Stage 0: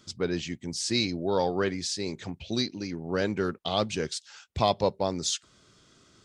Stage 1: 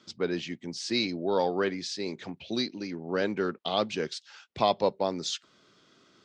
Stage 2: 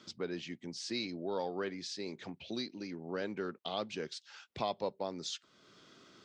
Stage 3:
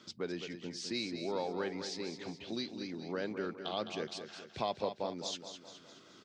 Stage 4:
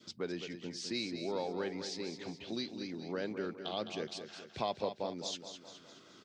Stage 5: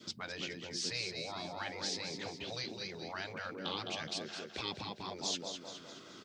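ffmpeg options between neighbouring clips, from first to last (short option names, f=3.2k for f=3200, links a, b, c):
-filter_complex "[0:a]acrossover=split=160 5600:gain=0.126 1 0.112[a][b][c];[a][b][c]amix=inputs=3:normalize=0"
-af "acompressor=threshold=-57dB:ratio=1.5,volume=2dB"
-af "aecho=1:1:210|420|630|840|1050|1260:0.355|0.181|0.0923|0.0471|0.024|0.0122"
-af "adynamicequalizer=threshold=0.002:dfrequency=1200:dqfactor=1.3:tfrequency=1200:tqfactor=1.3:attack=5:release=100:ratio=0.375:range=2:mode=cutabove:tftype=bell"
-af "afftfilt=real='re*lt(hypot(re,im),0.0355)':imag='im*lt(hypot(re,im),0.0355)':win_size=1024:overlap=0.75,volume=5.5dB"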